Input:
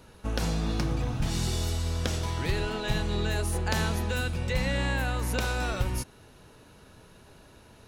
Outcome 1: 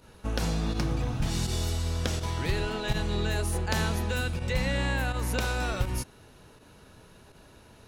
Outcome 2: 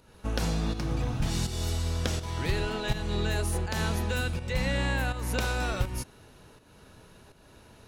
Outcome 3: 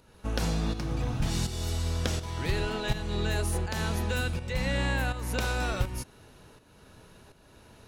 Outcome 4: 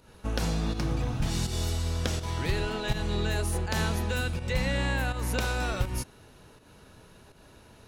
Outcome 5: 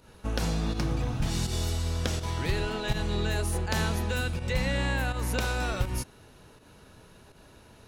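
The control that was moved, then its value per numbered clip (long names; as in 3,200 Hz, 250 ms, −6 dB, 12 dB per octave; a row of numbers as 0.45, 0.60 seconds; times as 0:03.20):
fake sidechain pumping, release: 65, 326, 497, 171, 116 milliseconds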